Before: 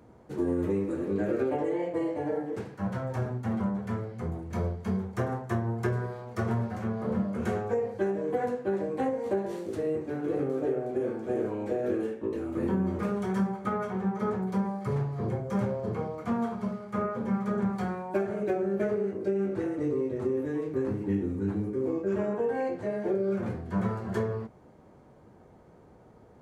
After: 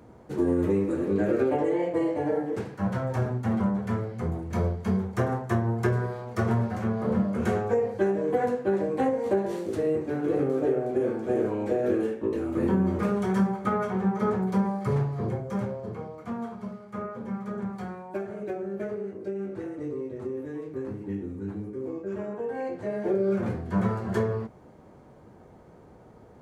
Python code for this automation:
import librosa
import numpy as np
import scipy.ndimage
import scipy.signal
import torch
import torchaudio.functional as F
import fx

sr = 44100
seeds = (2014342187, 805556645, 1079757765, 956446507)

y = fx.gain(x, sr, db=fx.line((14.97, 4.0), (15.97, -4.5), (22.36, -4.5), (23.22, 3.5)))